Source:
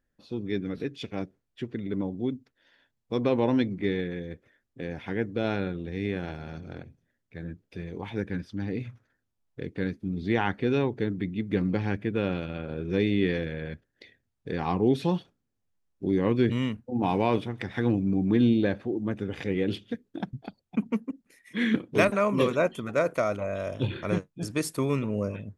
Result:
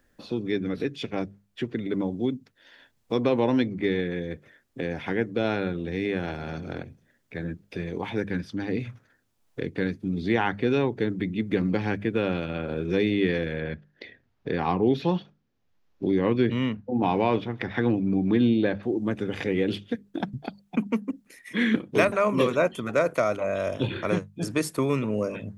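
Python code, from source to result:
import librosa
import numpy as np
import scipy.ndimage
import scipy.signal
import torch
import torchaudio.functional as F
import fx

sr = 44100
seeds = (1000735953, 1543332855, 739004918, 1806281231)

y = fx.moving_average(x, sr, points=5, at=(13.6, 18.83))
y = fx.low_shelf(y, sr, hz=200.0, db=-4.0)
y = fx.hum_notches(y, sr, base_hz=50, count=4)
y = fx.band_squash(y, sr, depth_pct=40)
y = y * librosa.db_to_amplitude(3.5)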